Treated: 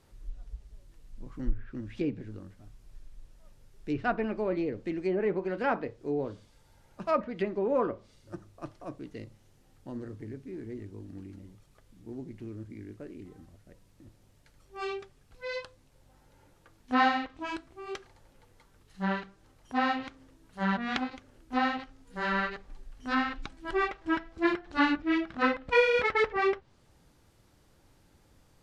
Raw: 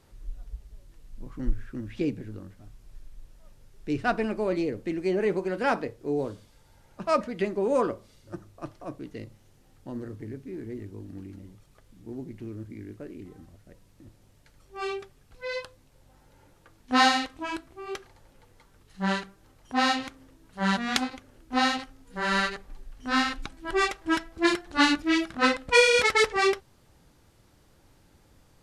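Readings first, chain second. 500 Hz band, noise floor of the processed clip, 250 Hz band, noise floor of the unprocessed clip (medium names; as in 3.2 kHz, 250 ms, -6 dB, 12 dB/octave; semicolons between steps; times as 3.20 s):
-3.0 dB, -63 dBFS, -3.0 dB, -60 dBFS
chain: low-pass that closes with the level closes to 2.2 kHz, closed at -22 dBFS; trim -3 dB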